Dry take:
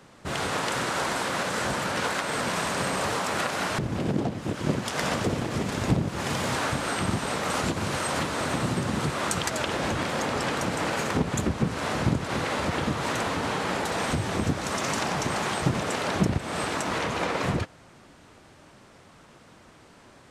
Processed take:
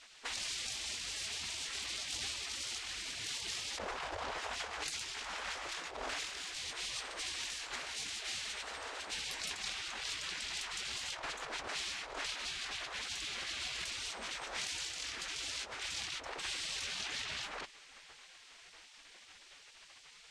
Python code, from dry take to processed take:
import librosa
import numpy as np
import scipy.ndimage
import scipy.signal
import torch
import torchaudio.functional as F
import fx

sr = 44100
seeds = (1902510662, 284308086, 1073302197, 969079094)

y = fx.spec_gate(x, sr, threshold_db=-15, keep='weak')
y = scipy.signal.sosfilt(scipy.signal.butter(2, 6900.0, 'lowpass', fs=sr, output='sos'), y)
y = fx.over_compress(y, sr, threshold_db=-43.0, ratio=-1.0)
y = y * librosa.db_to_amplitude(1.0)